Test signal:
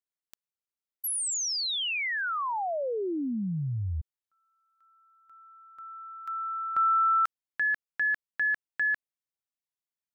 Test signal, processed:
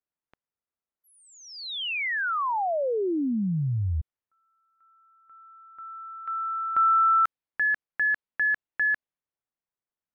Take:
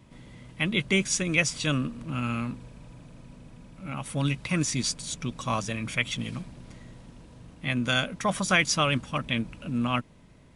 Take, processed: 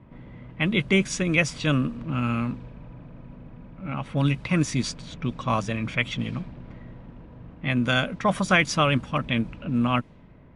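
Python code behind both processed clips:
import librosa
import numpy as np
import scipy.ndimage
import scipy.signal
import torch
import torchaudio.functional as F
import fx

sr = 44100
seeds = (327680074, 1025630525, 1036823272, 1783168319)

y = fx.peak_eq(x, sr, hz=8300.0, db=-10.0, octaves=2.2)
y = fx.env_lowpass(y, sr, base_hz=1900.0, full_db=-24.0)
y = y * librosa.db_to_amplitude(4.5)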